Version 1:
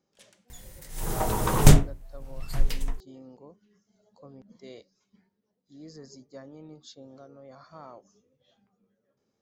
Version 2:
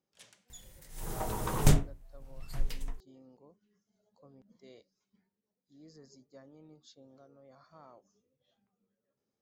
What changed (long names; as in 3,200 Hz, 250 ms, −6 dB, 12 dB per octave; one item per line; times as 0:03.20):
speech −9.5 dB
second sound −8.5 dB